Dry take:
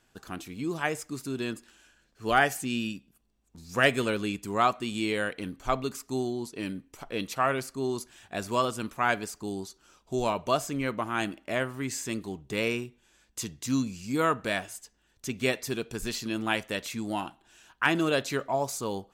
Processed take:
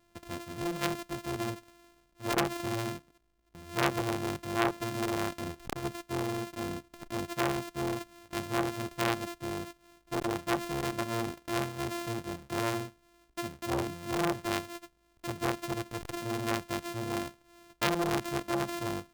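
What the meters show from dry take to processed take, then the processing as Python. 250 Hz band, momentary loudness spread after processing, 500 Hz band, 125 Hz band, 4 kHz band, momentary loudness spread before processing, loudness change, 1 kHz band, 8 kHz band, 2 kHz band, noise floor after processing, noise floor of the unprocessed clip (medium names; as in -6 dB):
-2.5 dB, 10 LU, -4.0 dB, -0.5 dB, -3.5 dB, 12 LU, -4.0 dB, -4.0 dB, -4.0 dB, -7.0 dB, -69 dBFS, -69 dBFS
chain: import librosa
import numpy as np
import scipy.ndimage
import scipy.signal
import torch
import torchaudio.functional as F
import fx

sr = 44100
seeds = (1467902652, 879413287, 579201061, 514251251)

y = np.r_[np.sort(x[:len(x) // 128 * 128].reshape(-1, 128), axis=1).ravel(), x[len(x) // 128 * 128:]]
y = fx.transformer_sat(y, sr, knee_hz=2000.0)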